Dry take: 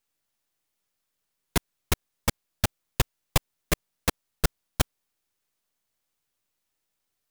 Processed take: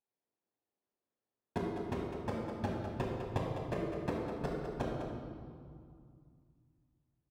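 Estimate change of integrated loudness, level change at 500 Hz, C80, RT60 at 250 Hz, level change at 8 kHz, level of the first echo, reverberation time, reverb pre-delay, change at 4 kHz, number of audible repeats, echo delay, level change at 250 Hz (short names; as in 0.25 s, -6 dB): -8.5 dB, -1.0 dB, 1.5 dB, 3.1 s, -28.5 dB, -8.0 dB, 2.3 s, 8 ms, -20.5 dB, 1, 0.203 s, -2.0 dB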